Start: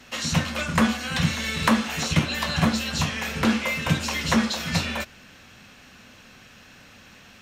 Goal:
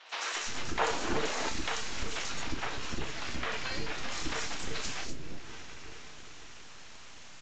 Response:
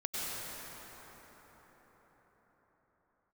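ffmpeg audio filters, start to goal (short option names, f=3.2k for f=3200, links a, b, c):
-filter_complex "[0:a]asplit=2[a][b];[b]adelay=34,volume=-9dB[c];[a][c]amix=inputs=2:normalize=0,asplit=2[d][e];[1:a]atrim=start_sample=2205,lowpass=5.3k,adelay=68[f];[e][f]afir=irnorm=-1:irlink=0,volume=-20.5dB[g];[d][g]amix=inputs=2:normalize=0,asettb=1/sr,asplit=3[h][i][j];[h]atrim=end=2.324[k];[i]atrim=start=2.32:end=4.03,asetpts=PTS-STARTPTS,afade=t=in:d=0.004:c=qsin,afade=t=out:st=1.706:d=0.004:c=qsin,acrossover=split=3200[l][m];[m]acompressor=threshold=-45dB:ratio=4:attack=1:release=60[n];[l][n]amix=inputs=2:normalize=0[o];[j]atrim=start=4.026[p];[k][o]acrossfade=d=0.004:c1=hsin:c2=qsin[q];[q][p]acrossfade=d=0.004:c1=qsin:c2=hsin,highshelf=f=3.3k:g=9,aeval=exprs='abs(val(0))':c=same,acrossover=split=470|4400[r][s][t];[t]adelay=90[u];[r]adelay=350[v];[v][s][u]amix=inputs=3:normalize=0,acompressor=threshold=-33dB:ratio=2.5,asettb=1/sr,asplit=3[w][x][y];[w]atrim=end=0.794[z];[x]atrim=start=0.79:end=1.49,asetpts=PTS-STARTPTS,afade=t=in:d=0.004:c=qsin,afade=t=out:st=0.696:d=0.004:c=qsin,equalizer=f=590:w=0.58:g=12[aa];[y]atrim=start=1.486[ab];[z][aa]acrossfade=d=0.004:c1=hsin:c2=qsin[ac];[ac][ab]acrossfade=d=0.004:c1=qsin:c2=hsin" -ar 16000 -c:a aac -b:a 48k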